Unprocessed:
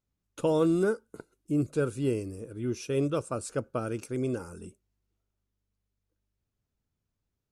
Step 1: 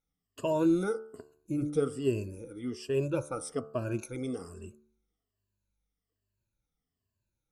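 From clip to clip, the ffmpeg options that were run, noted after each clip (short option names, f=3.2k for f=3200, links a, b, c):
-af "afftfilt=real='re*pow(10,18/40*sin(2*PI*(1.4*log(max(b,1)*sr/1024/100)/log(2)-(-1.2)*(pts-256)/sr)))':imag='im*pow(10,18/40*sin(2*PI*(1.4*log(max(b,1)*sr/1024/100)/log(2)-(-1.2)*(pts-256)/sr)))':win_size=1024:overlap=0.75,bandreject=f=73.94:t=h:w=4,bandreject=f=147.88:t=h:w=4,bandreject=f=221.82:t=h:w=4,bandreject=f=295.76:t=h:w=4,bandreject=f=369.7:t=h:w=4,bandreject=f=443.64:t=h:w=4,bandreject=f=517.58:t=h:w=4,bandreject=f=591.52:t=h:w=4,bandreject=f=665.46:t=h:w=4,bandreject=f=739.4:t=h:w=4,bandreject=f=813.34:t=h:w=4,bandreject=f=887.28:t=h:w=4,bandreject=f=961.22:t=h:w=4,bandreject=f=1.03516k:t=h:w=4,bandreject=f=1.1091k:t=h:w=4,bandreject=f=1.18304k:t=h:w=4,bandreject=f=1.25698k:t=h:w=4,bandreject=f=1.33092k:t=h:w=4,bandreject=f=1.40486k:t=h:w=4,bandreject=f=1.4788k:t=h:w=4,bandreject=f=1.55274k:t=h:w=4,volume=-5dB"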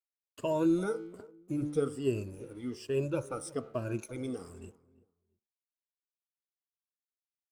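-filter_complex "[0:a]aeval=exprs='sgn(val(0))*max(abs(val(0))-0.00112,0)':c=same,asplit=2[a][b];[b]adelay=339,lowpass=f=1.1k:p=1,volume=-19dB,asplit=2[c][d];[d]adelay=339,lowpass=f=1.1k:p=1,volume=0.24[e];[a][c][e]amix=inputs=3:normalize=0,volume=-1.5dB"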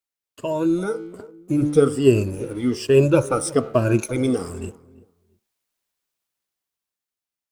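-af "dynaudnorm=f=330:g=9:m=11dB,volume=5.5dB"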